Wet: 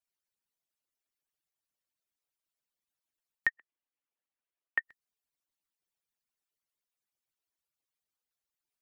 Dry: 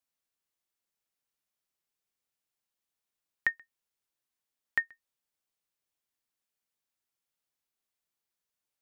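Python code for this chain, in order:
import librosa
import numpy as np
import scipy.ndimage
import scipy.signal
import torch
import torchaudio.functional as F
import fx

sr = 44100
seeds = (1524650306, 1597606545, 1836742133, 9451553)

y = fx.hpss_only(x, sr, part='percussive')
y = fx.ellip_bandpass(y, sr, low_hz=260.0, high_hz=2900.0, order=3, stop_db=40, at=(3.5, 4.82))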